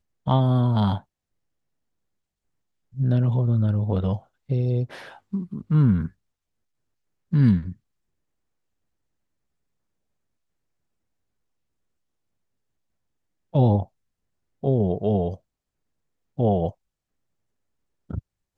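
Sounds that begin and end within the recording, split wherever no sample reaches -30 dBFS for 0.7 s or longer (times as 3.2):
2.98–6.07
7.33–7.72
13.55–13.83
14.64–15.34
16.39–16.7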